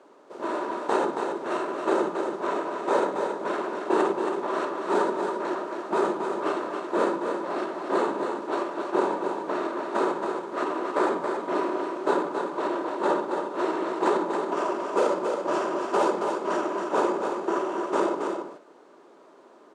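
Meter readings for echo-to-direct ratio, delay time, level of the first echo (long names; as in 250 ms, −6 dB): −5.5 dB, 275 ms, −5.5 dB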